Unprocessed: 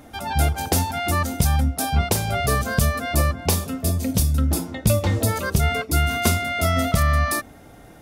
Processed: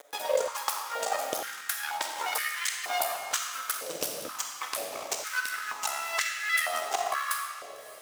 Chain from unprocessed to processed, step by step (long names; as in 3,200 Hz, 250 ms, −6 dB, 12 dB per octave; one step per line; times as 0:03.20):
pitch shifter gated in a rhythm −8 semitones, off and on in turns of 297 ms
source passing by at 0:03.55, 20 m/s, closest 29 metres
high-shelf EQ 2,600 Hz +8.5 dB
transient designer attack +10 dB, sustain −11 dB
downward compressor 6 to 1, threshold −25 dBFS, peak gain reduction 19 dB
phase shifter 0.72 Hz, delay 3.5 ms, feedback 40%
half-wave rectification
bit reduction 7 bits
feedback delay with all-pass diffusion 610 ms, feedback 40%, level −15 dB
comb and all-pass reverb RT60 1.7 s, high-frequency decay 0.85×, pre-delay 5 ms, DRR 2 dB
high-pass on a step sequencer 2.1 Hz 530–1,800 Hz
level −1 dB